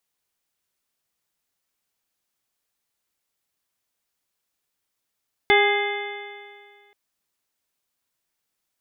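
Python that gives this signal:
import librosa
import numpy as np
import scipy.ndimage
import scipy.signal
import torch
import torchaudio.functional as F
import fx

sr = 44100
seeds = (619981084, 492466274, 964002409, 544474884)

y = fx.additive_stiff(sr, length_s=1.43, hz=406.0, level_db=-17, upper_db=(-1.5, -12.5, -6.5, 1.0, -15.5, -14, -7.0), decay_s=1.98, stiffness=0.0024)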